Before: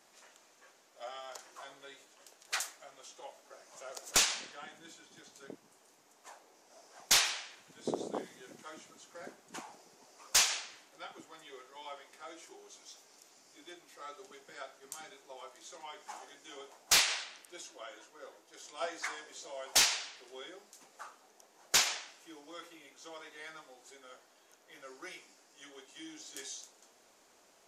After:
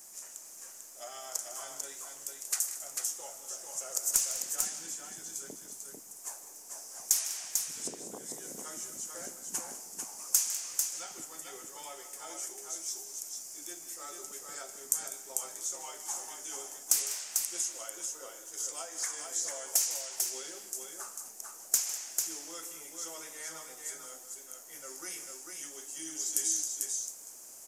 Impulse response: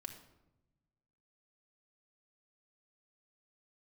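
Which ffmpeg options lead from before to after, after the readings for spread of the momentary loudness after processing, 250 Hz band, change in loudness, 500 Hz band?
15 LU, -2.0 dB, -3.0 dB, -2.5 dB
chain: -filter_complex "[0:a]lowshelf=f=150:g=8,acompressor=threshold=-41dB:ratio=20,aexciter=amount=8.6:drive=6.4:freq=5.6k,asplit=2[a][b];[b]aecho=0:1:154|199|445:0.168|0.178|0.596[c];[a][c]amix=inputs=2:normalize=0"

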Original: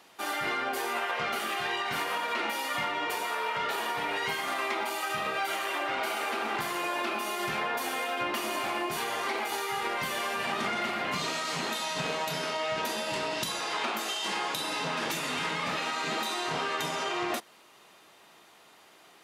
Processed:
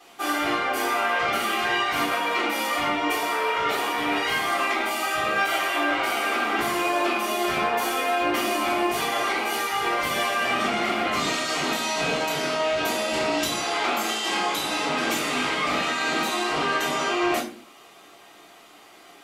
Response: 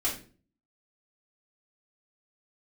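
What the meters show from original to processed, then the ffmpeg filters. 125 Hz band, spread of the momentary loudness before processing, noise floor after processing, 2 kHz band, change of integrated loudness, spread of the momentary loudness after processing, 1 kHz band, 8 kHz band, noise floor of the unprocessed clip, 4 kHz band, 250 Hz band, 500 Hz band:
+4.0 dB, 1 LU, -50 dBFS, +7.0 dB, +7.0 dB, 2 LU, +6.5 dB, +6.5 dB, -57 dBFS, +6.0 dB, +10.0 dB, +8.0 dB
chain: -filter_complex "[1:a]atrim=start_sample=2205[a];[0:a][a]afir=irnorm=-1:irlink=0"

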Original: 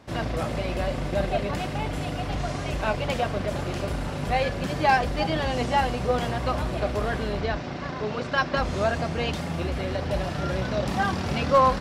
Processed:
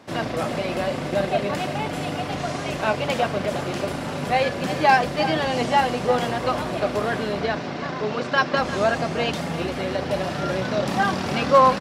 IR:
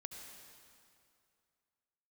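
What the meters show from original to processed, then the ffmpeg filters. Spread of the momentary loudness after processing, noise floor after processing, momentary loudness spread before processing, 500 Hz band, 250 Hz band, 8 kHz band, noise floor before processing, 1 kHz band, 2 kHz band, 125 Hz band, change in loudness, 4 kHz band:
9 LU, -30 dBFS, 7 LU, +4.0 dB, +3.0 dB, +4.0 dB, -32 dBFS, +4.0 dB, +4.0 dB, -1.5 dB, +3.5 dB, +4.0 dB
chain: -filter_complex "[0:a]highpass=160,asplit=2[a][b];[b]aecho=0:1:347:0.211[c];[a][c]amix=inputs=2:normalize=0,volume=4dB"

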